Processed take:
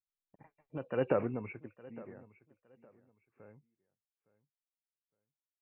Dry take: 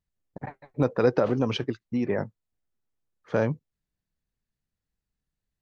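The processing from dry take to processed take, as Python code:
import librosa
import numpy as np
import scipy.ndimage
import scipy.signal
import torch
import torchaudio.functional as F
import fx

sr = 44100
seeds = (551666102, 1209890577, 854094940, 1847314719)

y = fx.freq_compress(x, sr, knee_hz=2200.0, ratio=4.0)
y = fx.doppler_pass(y, sr, speed_mps=21, closest_m=2.2, pass_at_s=1.13)
y = fx.echo_feedback(y, sr, ms=862, feedback_pct=25, wet_db=-20.0)
y = F.gain(torch.from_numpy(y), -6.0).numpy()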